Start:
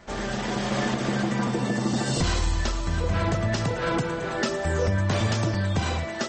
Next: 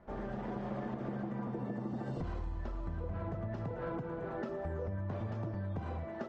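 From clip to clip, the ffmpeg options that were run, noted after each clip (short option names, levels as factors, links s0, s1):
-af "lowpass=1000,aemphasis=mode=production:type=50kf,acompressor=threshold=0.0447:ratio=6,volume=0.398"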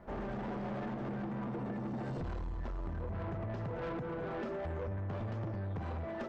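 -af "asoftclip=type=tanh:threshold=0.01,volume=1.78"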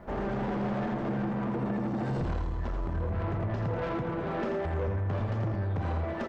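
-af "aecho=1:1:84:0.501,volume=2.11"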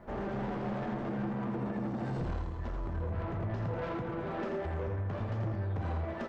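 -af "flanger=delay=8.1:depth=9.7:regen=-59:speed=0.71:shape=sinusoidal"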